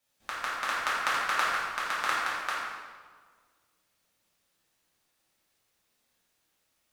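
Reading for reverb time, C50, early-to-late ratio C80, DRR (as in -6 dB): 1.6 s, -1.5 dB, 1.0 dB, -9.0 dB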